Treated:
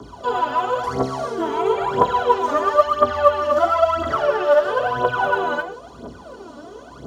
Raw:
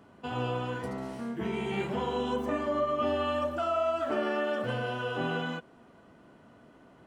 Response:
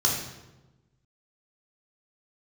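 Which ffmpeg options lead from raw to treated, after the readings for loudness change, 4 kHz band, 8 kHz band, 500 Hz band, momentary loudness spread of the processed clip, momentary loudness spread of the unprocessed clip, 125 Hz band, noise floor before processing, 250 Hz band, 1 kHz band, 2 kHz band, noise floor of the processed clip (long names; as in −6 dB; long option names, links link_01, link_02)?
+12.0 dB, +6.5 dB, can't be measured, +12.0 dB, 21 LU, 8 LU, +2.5 dB, −57 dBFS, +3.5 dB, +15.5 dB, +10.5 dB, −41 dBFS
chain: -filter_complex "[0:a]acrossover=split=380|1700[link_01][link_02][link_03];[link_01]acompressor=threshold=-48dB:ratio=4[link_04];[link_02]acompressor=threshold=-31dB:ratio=4[link_05];[link_03]acompressor=threshold=-51dB:ratio=4[link_06];[link_04][link_05][link_06]amix=inputs=3:normalize=0,aeval=exprs='val(0)+0.00158*(sin(2*PI*60*n/s)+sin(2*PI*2*60*n/s)/2+sin(2*PI*3*60*n/s)/3+sin(2*PI*4*60*n/s)/4+sin(2*PI*5*60*n/s)/5)':channel_layout=same,equalizer=frequency=125:width_type=o:width=1:gain=-7,equalizer=frequency=500:width_type=o:width=1:gain=8,equalizer=frequency=1000:width_type=o:width=1:gain=3,equalizer=frequency=2000:width_type=o:width=1:gain=-7,equalizer=frequency=4000:width_type=o:width=1:gain=9,equalizer=frequency=8000:width_type=o:width=1:gain=5,acrossover=split=110|780|2400[link_07][link_08][link_09][link_10];[link_08]asoftclip=type=tanh:threshold=-36dB[link_11];[link_10]acompressor=threshold=-57dB:ratio=6[link_12];[link_07][link_11][link_09][link_12]amix=inputs=4:normalize=0[link_13];[1:a]atrim=start_sample=2205,afade=type=out:start_time=0.22:duration=0.01,atrim=end_sample=10143[link_14];[link_13][link_14]afir=irnorm=-1:irlink=0,aphaser=in_gain=1:out_gain=1:delay=3.6:decay=0.73:speed=0.99:type=triangular,volume=-1dB"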